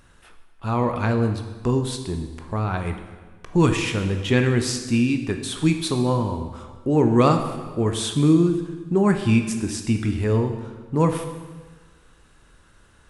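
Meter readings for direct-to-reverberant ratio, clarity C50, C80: 5.5 dB, 8.0 dB, 9.5 dB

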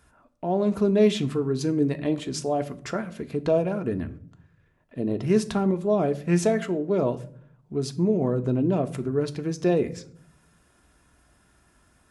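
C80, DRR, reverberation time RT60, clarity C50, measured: 21.5 dB, 7.5 dB, 0.55 s, 17.5 dB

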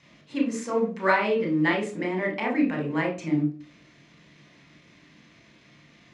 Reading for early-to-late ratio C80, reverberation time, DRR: 14.5 dB, 0.40 s, 0.5 dB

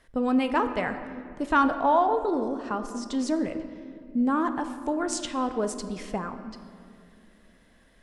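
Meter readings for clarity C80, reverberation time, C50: 11.0 dB, 2.4 s, 10.0 dB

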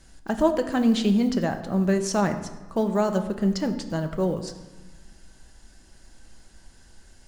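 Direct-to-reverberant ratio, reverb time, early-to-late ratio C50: 6.0 dB, 1.2 s, 10.5 dB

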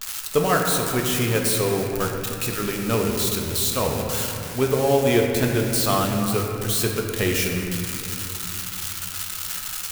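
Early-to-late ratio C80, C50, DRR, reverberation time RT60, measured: 3.5 dB, 2.5 dB, 0.5 dB, 3.0 s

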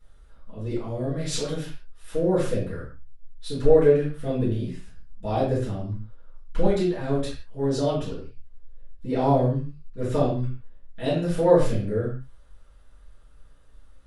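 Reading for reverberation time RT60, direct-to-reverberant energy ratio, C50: non-exponential decay, −11.0 dB, 3.5 dB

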